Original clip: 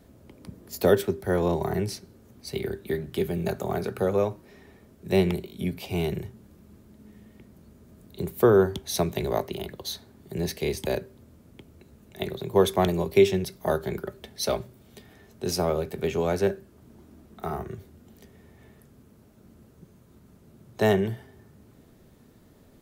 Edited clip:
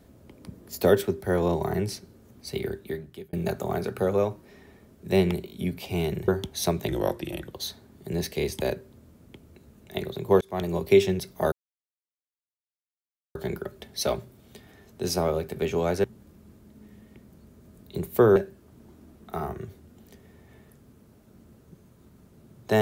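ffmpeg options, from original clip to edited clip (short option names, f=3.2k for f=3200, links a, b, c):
-filter_complex "[0:a]asplit=9[a][b][c][d][e][f][g][h][i];[a]atrim=end=3.33,asetpts=PTS-STARTPTS,afade=t=out:st=2.67:d=0.66[j];[b]atrim=start=3.33:end=6.282,asetpts=PTS-STARTPTS,afade=t=in:d=0.004:c=hsin[k];[c]atrim=start=8.598:end=9.204[l];[d]atrim=start=9.2:end=9.77,asetpts=PTS-STARTPTS,asetrate=39249,aresample=44100[m];[e]atrim=start=9.766:end=12.66,asetpts=PTS-STARTPTS,afade=t=out:st=2.89:d=0.004:c=hsin[n];[f]atrim=start=12.66:end=13.77,asetpts=PTS-STARTPTS,afade=t=in:d=0.39,afade=t=out:st=1.106:d=0.004:c=hsin,apad=pad_dur=1.83[o];[g]atrim=start=13.77:end=16.462,asetpts=PTS-STARTPTS,afade=t=in:d=0.004:c=hsin[p];[h]atrim=start=6.278:end=8.602[q];[i]atrim=start=16.458[r];[j][k]concat=n=2:v=0:a=1[s];[s][l]acrossfade=d=0.004:c1=hsin:c2=hsin[t];[t][m]acrossfade=d=0.004:c1=hsin:c2=hsin[u];[n][o][p]concat=n=3:v=0:a=1[v];[u][v]acrossfade=d=0.004:c1=hsin:c2=hsin[w];[w][q]acrossfade=d=0.004:c1=hsin:c2=hsin[x];[x][r]acrossfade=d=0.004:c1=hsin:c2=hsin"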